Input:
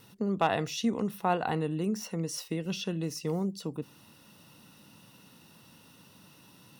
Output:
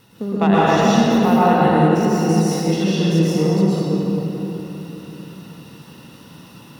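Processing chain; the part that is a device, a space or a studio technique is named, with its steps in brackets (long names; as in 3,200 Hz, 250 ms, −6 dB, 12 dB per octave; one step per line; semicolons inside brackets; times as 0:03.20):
swimming-pool hall (convolution reverb RT60 3.4 s, pre-delay 107 ms, DRR −9.5 dB; high-shelf EQ 5,200 Hz −5 dB)
level +4.5 dB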